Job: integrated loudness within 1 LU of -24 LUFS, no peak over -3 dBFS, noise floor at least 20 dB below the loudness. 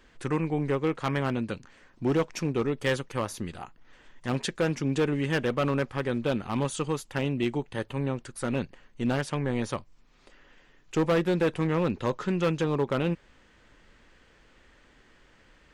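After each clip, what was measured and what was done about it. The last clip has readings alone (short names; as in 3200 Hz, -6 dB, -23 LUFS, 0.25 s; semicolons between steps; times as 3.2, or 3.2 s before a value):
clipped 1.5%; flat tops at -19.5 dBFS; loudness -29.0 LUFS; peak -19.5 dBFS; loudness target -24.0 LUFS
-> clip repair -19.5 dBFS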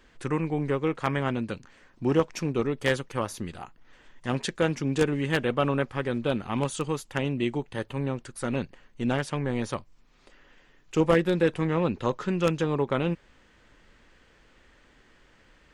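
clipped 0.0%; loudness -28.0 LUFS; peak -10.5 dBFS; loudness target -24.0 LUFS
-> gain +4 dB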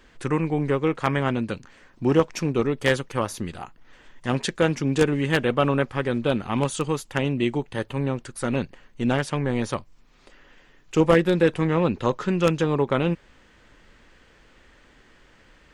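loudness -24.0 LUFS; peak -6.5 dBFS; noise floor -56 dBFS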